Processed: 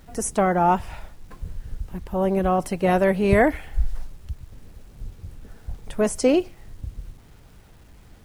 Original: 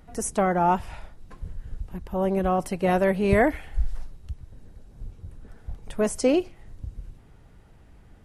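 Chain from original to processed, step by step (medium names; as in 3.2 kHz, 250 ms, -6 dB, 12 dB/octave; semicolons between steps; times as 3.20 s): bit crusher 10-bit; trim +2.5 dB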